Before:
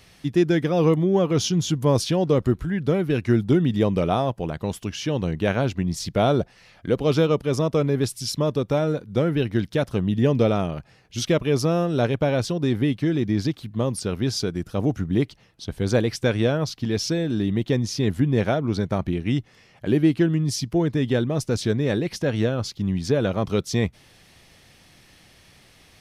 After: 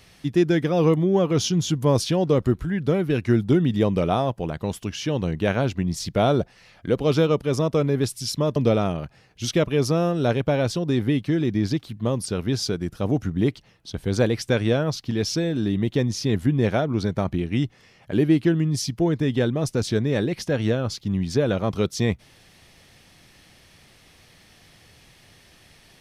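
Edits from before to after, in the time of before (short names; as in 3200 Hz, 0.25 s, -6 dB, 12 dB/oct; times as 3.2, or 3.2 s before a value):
8.56–10.3 cut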